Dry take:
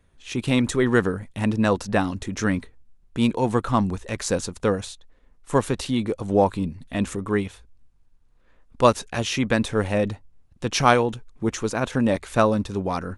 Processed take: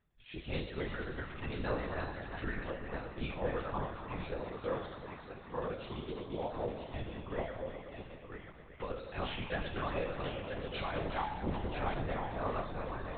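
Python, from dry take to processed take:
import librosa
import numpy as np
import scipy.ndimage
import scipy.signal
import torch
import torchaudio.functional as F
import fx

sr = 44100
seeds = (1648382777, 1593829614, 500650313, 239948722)

y = fx.reverse_delay_fb(x, sr, ms=181, feedback_pct=45, wet_db=-5)
y = fx.low_shelf(y, sr, hz=220.0, db=-2.5)
y = y + 10.0 ** (-6.0 / 20.0) * np.pad(y, (int(986 * sr / 1000.0), 0))[:len(y)]
y = fx.over_compress(y, sr, threshold_db=-18.0, ratio=-0.5)
y = fx.dereverb_blind(y, sr, rt60_s=2.0)
y = fx.comb_fb(y, sr, f0_hz=170.0, decay_s=0.67, harmonics='all', damping=0.0, mix_pct=90)
y = fx.echo_heads(y, sr, ms=121, heads='all three', feedback_pct=65, wet_db=-14.0)
y = fx.lpc_vocoder(y, sr, seeds[0], excitation='whisper', order=10)
y = fx.low_shelf(y, sr, hz=80.0, db=-8.5, at=(4.4, 6.93))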